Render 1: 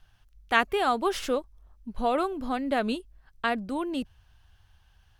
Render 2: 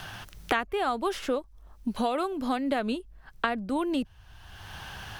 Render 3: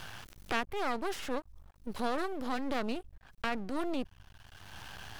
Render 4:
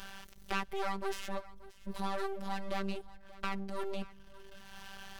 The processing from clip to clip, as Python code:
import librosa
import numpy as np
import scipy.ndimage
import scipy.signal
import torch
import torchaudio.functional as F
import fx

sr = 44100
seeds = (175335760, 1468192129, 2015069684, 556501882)

y1 = fx.band_squash(x, sr, depth_pct=100)
y1 = y1 * 10.0 ** (-2.0 / 20.0)
y2 = np.maximum(y1, 0.0)
y2 = fx.transient(y2, sr, attack_db=-5, sustain_db=3)
y2 = y2 * 10.0 ** (-1.5 / 20.0)
y3 = fx.robotise(y2, sr, hz=195.0)
y3 = y3 + 10.0 ** (-19.0 / 20.0) * np.pad(y3, (int(581 * sr / 1000.0), 0))[:len(y3)]